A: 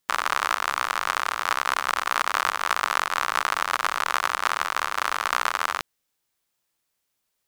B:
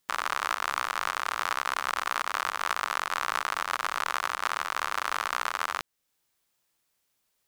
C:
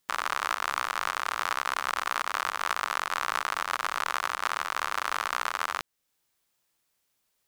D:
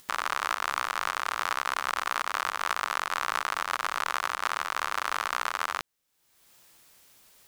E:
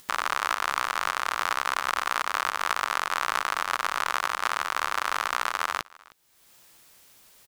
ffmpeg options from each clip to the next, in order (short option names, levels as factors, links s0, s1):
-af "alimiter=limit=0.251:level=0:latency=1:release=383,volume=1.19"
-af anull
-af "acompressor=mode=upward:threshold=0.00794:ratio=2.5"
-af "aecho=1:1:311:0.0668,volume=1.33"